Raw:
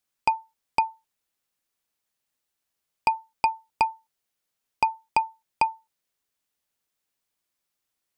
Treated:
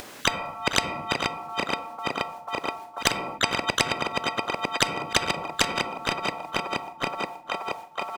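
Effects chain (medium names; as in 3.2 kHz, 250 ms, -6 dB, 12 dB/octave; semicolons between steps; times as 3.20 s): backward echo that repeats 238 ms, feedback 76%, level -13 dB; gate with hold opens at -56 dBFS; high-pass 330 Hz 12 dB/octave; tilt EQ -4 dB/octave; in parallel at -2 dB: upward compressor, threshold -30 dBFS; on the sum: harmony voices -4 st -8 dB, +4 st -11 dB, +7 st -15 dB; delay 458 ms -20.5 dB; on a send at -16 dB: reverberation RT60 0.65 s, pre-delay 4 ms; on the sum: spectrum-flattening compressor 10:1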